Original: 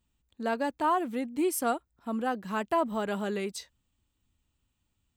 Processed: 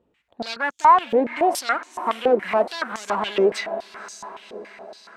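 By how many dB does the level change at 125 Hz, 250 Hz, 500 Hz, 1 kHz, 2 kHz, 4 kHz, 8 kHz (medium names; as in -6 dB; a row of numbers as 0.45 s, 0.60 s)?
no reading, +2.0 dB, +10.5 dB, +11.5 dB, +10.5 dB, +12.5 dB, +3.5 dB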